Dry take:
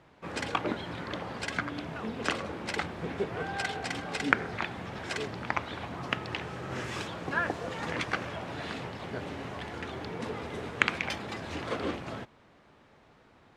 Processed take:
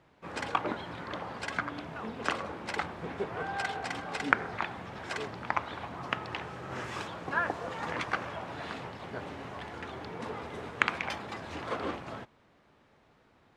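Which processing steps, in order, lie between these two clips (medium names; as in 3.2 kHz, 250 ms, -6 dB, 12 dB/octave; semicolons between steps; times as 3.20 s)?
dynamic bell 1 kHz, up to +7 dB, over -45 dBFS, Q 0.89; trim -4.5 dB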